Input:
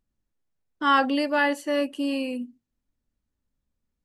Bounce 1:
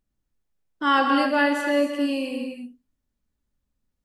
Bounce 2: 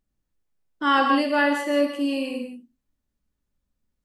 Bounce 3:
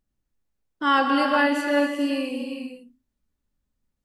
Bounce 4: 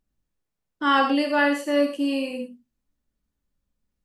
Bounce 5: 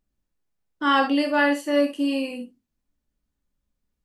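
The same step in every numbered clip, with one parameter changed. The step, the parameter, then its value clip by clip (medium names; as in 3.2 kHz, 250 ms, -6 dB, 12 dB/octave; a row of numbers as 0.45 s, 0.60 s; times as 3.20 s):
gated-style reverb, gate: 320 ms, 210 ms, 480 ms, 130 ms, 90 ms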